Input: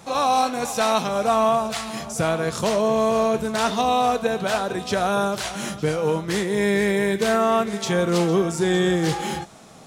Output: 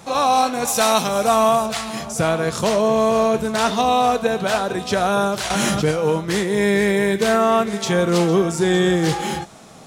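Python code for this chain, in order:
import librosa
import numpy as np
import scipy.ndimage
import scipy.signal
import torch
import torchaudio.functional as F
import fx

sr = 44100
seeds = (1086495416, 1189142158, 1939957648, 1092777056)

y = fx.high_shelf(x, sr, hz=6600.0, db=11.5, at=(0.67, 1.66))
y = fx.env_flatten(y, sr, amount_pct=70, at=(5.5, 5.91))
y = y * librosa.db_to_amplitude(3.0)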